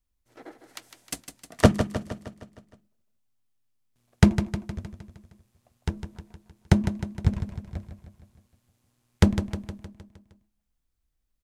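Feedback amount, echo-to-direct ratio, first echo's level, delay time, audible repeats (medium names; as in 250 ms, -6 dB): 56%, -8.0 dB, -9.5 dB, 155 ms, 6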